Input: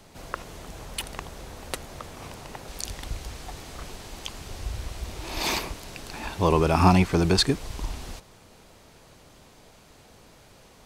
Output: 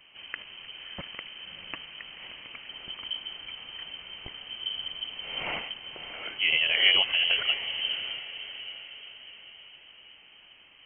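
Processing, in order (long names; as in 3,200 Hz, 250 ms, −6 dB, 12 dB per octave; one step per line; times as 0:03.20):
voice inversion scrambler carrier 3,100 Hz
feedback delay with all-pass diffusion 628 ms, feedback 47%, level −11 dB
level −4.5 dB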